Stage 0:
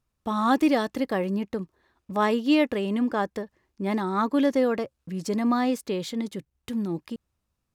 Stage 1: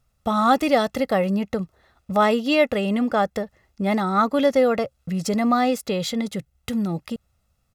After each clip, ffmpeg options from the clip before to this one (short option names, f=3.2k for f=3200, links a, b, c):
-filter_complex "[0:a]asplit=2[a][b];[b]acompressor=threshold=-31dB:ratio=6,volume=-2dB[c];[a][c]amix=inputs=2:normalize=0,aecho=1:1:1.5:0.6,volume=2.5dB"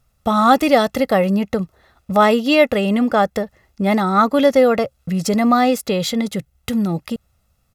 -af "equalizer=f=12k:w=3.1:g=4.5,volume=5dB"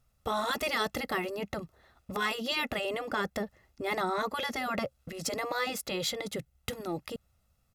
-af "afftfilt=real='re*lt(hypot(re,im),0.794)':imag='im*lt(hypot(re,im),0.794)':win_size=1024:overlap=0.75,volume=-8dB"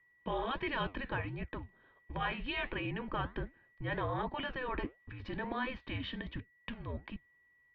-af "flanger=delay=4.6:depth=9.9:regen=-78:speed=1.4:shape=triangular,aeval=exprs='val(0)+0.000501*sin(2*PI*2200*n/s)':c=same,highpass=f=160:t=q:w=0.5412,highpass=f=160:t=q:w=1.307,lowpass=f=3.4k:t=q:w=0.5176,lowpass=f=3.4k:t=q:w=0.7071,lowpass=f=3.4k:t=q:w=1.932,afreqshift=-260"